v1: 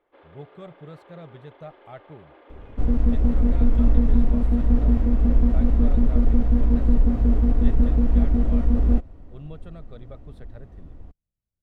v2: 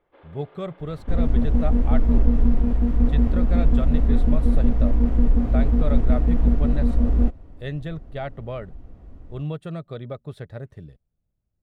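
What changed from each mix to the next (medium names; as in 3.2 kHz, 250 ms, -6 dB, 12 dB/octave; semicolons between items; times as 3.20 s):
speech +10.5 dB; second sound: entry -1.70 s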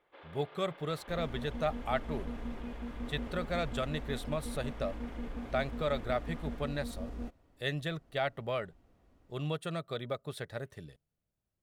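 speech: send on; second sound -11.5 dB; master: add tilt EQ +3 dB/octave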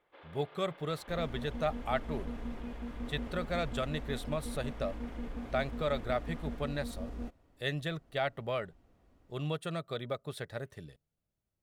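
first sound: send -11.5 dB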